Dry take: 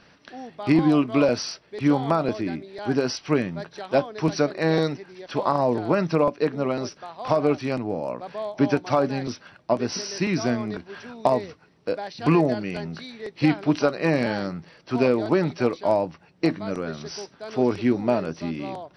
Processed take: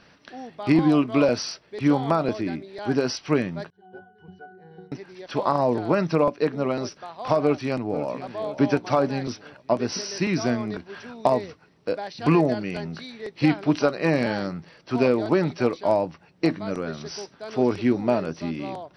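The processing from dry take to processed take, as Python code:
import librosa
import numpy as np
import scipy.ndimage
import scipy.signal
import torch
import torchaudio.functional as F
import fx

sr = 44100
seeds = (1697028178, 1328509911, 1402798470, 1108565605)

y = fx.octave_resonator(x, sr, note='F#', decay_s=0.43, at=(3.7, 4.92))
y = fx.echo_throw(y, sr, start_s=7.42, length_s=0.69, ms=500, feedback_pct=50, wet_db=-12.5)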